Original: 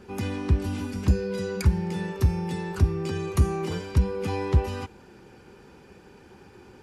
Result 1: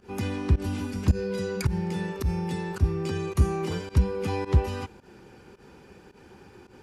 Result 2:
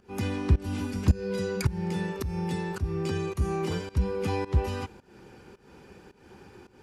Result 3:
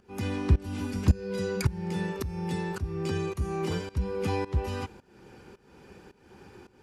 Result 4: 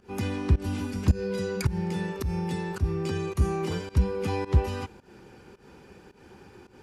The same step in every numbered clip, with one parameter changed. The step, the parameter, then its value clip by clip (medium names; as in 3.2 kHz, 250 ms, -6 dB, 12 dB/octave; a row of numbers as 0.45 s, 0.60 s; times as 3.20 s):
volume shaper, release: 99 ms, 271 ms, 432 ms, 165 ms